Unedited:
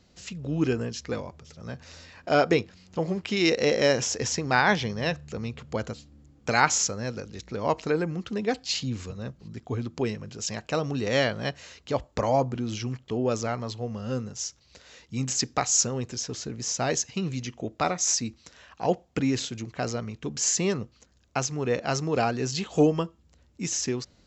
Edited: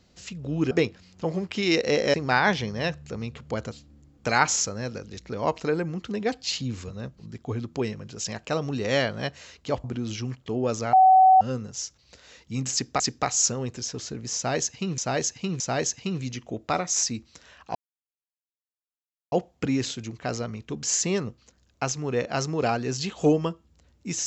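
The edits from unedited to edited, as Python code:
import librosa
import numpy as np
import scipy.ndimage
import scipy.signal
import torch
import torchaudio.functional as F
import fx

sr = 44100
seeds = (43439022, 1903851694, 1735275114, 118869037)

y = fx.edit(x, sr, fx.cut(start_s=0.71, length_s=1.74),
    fx.cut(start_s=3.88, length_s=0.48),
    fx.cut(start_s=12.06, length_s=0.4),
    fx.bleep(start_s=13.55, length_s=0.48, hz=755.0, db=-11.5),
    fx.repeat(start_s=15.35, length_s=0.27, count=2),
    fx.repeat(start_s=16.71, length_s=0.62, count=3),
    fx.insert_silence(at_s=18.86, length_s=1.57), tone=tone)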